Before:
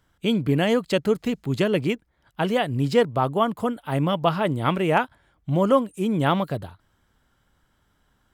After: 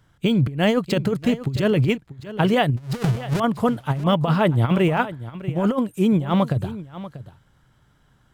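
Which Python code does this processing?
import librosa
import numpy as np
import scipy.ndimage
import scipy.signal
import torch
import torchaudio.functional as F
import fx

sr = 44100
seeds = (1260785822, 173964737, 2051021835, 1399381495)

y = fx.halfwave_hold(x, sr, at=(2.77, 3.4))
y = fx.peak_eq(y, sr, hz=130.0, db=11.5, octaves=0.55)
y = fx.over_compress(y, sr, threshold_db=-20.0, ratio=-0.5)
y = y + 10.0 ** (-15.0 / 20.0) * np.pad(y, (int(639 * sr / 1000.0), 0))[:len(y)]
y = np.interp(np.arange(len(y)), np.arange(len(y))[::2], y[::2])
y = y * 10.0 ** (1.0 / 20.0)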